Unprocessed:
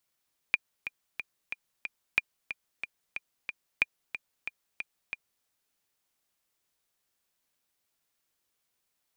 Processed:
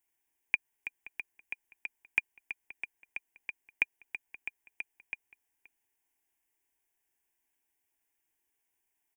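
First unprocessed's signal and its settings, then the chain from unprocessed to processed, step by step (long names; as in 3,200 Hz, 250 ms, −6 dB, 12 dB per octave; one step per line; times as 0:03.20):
click track 183 BPM, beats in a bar 5, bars 3, 2,410 Hz, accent 11.5 dB −9.5 dBFS
phaser with its sweep stopped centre 840 Hz, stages 8
slap from a distant wall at 90 metres, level −18 dB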